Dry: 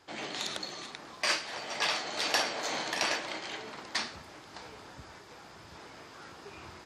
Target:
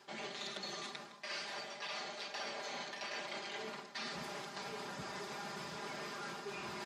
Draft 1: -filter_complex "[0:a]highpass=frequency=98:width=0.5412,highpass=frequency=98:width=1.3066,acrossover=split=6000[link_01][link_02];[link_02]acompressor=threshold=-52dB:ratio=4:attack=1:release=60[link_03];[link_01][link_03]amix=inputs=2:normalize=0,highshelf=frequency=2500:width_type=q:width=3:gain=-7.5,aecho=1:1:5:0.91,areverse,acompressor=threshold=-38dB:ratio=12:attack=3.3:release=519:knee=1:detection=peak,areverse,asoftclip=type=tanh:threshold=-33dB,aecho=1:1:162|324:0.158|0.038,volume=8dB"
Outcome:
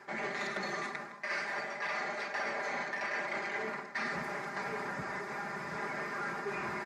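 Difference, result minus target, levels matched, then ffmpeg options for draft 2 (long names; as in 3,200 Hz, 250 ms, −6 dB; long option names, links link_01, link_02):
4,000 Hz band −11.0 dB; downward compressor: peak gain reduction −6 dB
-filter_complex "[0:a]highpass=frequency=98:width=0.5412,highpass=frequency=98:width=1.3066,acrossover=split=6000[link_01][link_02];[link_02]acompressor=threshold=-52dB:ratio=4:attack=1:release=60[link_03];[link_01][link_03]amix=inputs=2:normalize=0,aecho=1:1:5:0.91,areverse,acompressor=threshold=-46.5dB:ratio=12:attack=3.3:release=519:knee=1:detection=peak,areverse,asoftclip=type=tanh:threshold=-33dB,aecho=1:1:162|324:0.158|0.038,volume=8dB"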